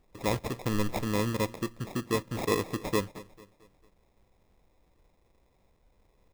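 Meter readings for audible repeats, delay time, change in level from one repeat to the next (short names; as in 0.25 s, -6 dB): 3, 0.223 s, -7.0 dB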